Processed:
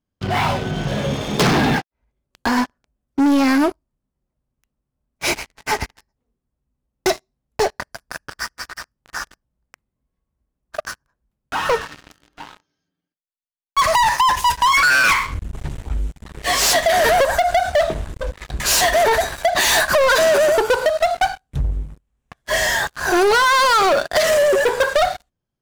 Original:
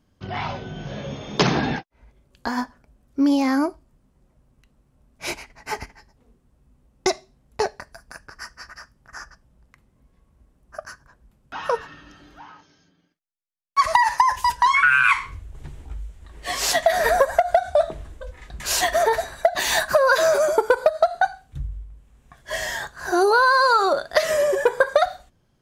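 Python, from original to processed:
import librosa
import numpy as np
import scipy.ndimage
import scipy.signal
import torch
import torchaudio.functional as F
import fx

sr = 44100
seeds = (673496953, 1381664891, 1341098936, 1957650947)

y = fx.leveller(x, sr, passes=5)
y = F.gain(torch.from_numpy(y), -7.5).numpy()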